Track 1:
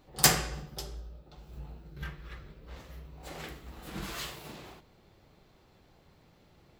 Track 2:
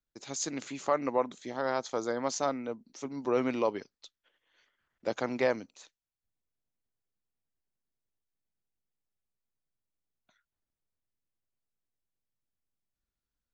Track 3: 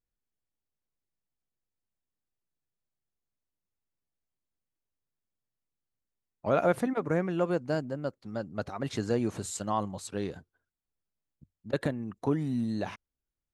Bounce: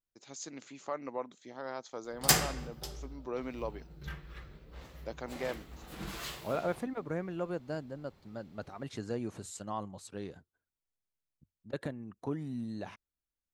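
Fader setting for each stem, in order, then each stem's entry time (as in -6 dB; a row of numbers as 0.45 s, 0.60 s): -2.5 dB, -9.5 dB, -8.0 dB; 2.05 s, 0.00 s, 0.00 s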